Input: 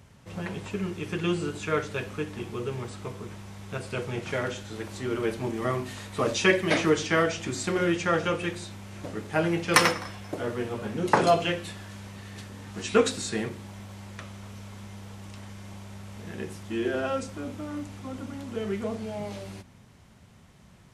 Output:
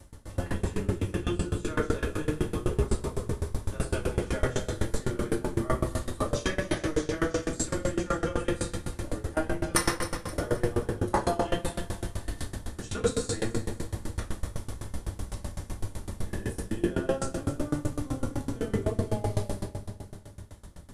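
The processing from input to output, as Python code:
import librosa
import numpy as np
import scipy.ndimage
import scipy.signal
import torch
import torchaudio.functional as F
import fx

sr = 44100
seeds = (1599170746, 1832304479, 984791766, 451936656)

p1 = fx.octave_divider(x, sr, octaves=1, level_db=2.0)
p2 = fx.rider(p1, sr, range_db=5, speed_s=0.5)
p3 = fx.graphic_eq_15(p2, sr, hz=(160, 2500, 10000), db=(-9, -8, 11))
p4 = p3 + fx.echo_feedback(p3, sr, ms=263, feedback_pct=52, wet_db=-11, dry=0)
p5 = fx.room_shoebox(p4, sr, seeds[0], volume_m3=470.0, walls='mixed', distance_m=2.5)
p6 = fx.tremolo_decay(p5, sr, direction='decaying', hz=7.9, depth_db=22)
y = p6 * 10.0 ** (-2.0 / 20.0)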